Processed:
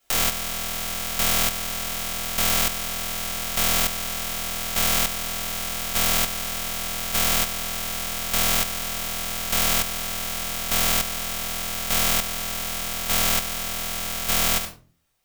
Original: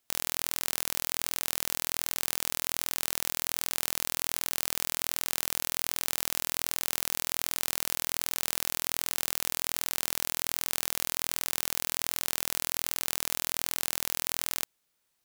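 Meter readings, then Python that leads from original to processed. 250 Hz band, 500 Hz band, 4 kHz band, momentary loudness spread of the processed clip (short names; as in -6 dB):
+12.5 dB, +10.5 dB, +8.5 dB, 7 LU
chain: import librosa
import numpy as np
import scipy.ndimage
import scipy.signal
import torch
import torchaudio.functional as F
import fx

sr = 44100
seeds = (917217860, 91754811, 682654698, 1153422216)

y = fx.room_shoebox(x, sr, seeds[0], volume_m3=230.0, walls='furnished', distance_m=6.6)
y = fx.chopper(y, sr, hz=0.84, depth_pct=60, duty_pct=25)
y = F.gain(torch.from_numpy(y), 1.5).numpy()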